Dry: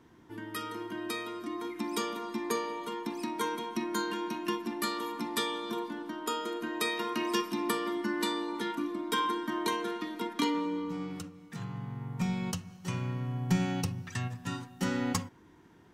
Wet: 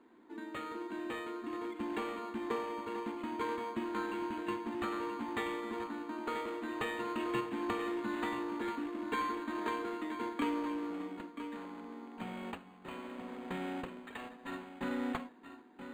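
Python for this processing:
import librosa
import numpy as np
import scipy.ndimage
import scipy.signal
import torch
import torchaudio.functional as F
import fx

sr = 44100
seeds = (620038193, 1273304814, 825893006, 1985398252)

p1 = (np.mod(10.0 ** (31.0 / 20.0) * x + 1.0, 2.0) - 1.0) / 10.0 ** (31.0 / 20.0)
p2 = x + (p1 * 10.0 ** (-11.0 / 20.0))
p3 = fx.brickwall_highpass(p2, sr, low_hz=200.0)
p4 = p3 + 10.0 ** (-10.0 / 20.0) * np.pad(p3, (int(981 * sr / 1000.0), 0))[:len(p3)]
p5 = np.interp(np.arange(len(p4)), np.arange(len(p4))[::8], p4[::8])
y = p5 * 10.0 ** (-4.0 / 20.0)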